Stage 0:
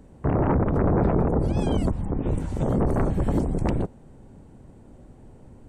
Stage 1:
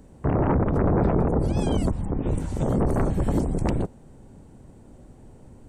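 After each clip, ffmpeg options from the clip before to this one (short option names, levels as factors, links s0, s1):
-af "bass=f=250:g=0,treble=f=4000:g=5"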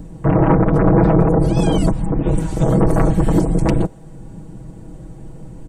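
-filter_complex "[0:a]aecho=1:1:6.2:0.88,acrossover=split=300|1300|4800[s0][s1][s2][s3];[s0]acompressor=mode=upward:threshold=0.0251:ratio=2.5[s4];[s4][s1][s2][s3]amix=inputs=4:normalize=0,volume=2"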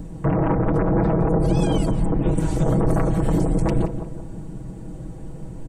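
-filter_complex "[0:a]alimiter=limit=0.251:level=0:latency=1:release=73,asplit=2[s0][s1];[s1]adelay=177,lowpass=f=1600:p=1,volume=0.355,asplit=2[s2][s3];[s3]adelay=177,lowpass=f=1600:p=1,volume=0.47,asplit=2[s4][s5];[s5]adelay=177,lowpass=f=1600:p=1,volume=0.47,asplit=2[s6][s7];[s7]adelay=177,lowpass=f=1600:p=1,volume=0.47,asplit=2[s8][s9];[s9]adelay=177,lowpass=f=1600:p=1,volume=0.47[s10];[s0][s2][s4][s6][s8][s10]amix=inputs=6:normalize=0"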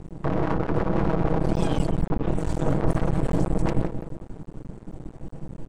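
-af "aeval=exprs='max(val(0),0)':c=same,adynamicsmooth=sensitivity=8:basefreq=7600"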